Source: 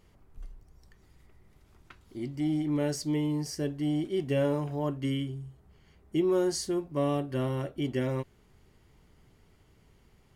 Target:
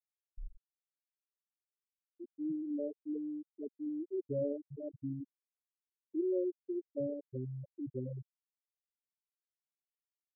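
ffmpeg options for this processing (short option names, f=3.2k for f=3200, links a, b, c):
-af "bandreject=f=49.31:t=h:w=4,bandreject=f=98.62:t=h:w=4,bandreject=f=147.93:t=h:w=4,asubboost=boost=7:cutoff=62,afftfilt=real='re*gte(hypot(re,im),0.178)':imag='im*gte(hypot(re,im),0.178)':win_size=1024:overlap=0.75,volume=-5.5dB"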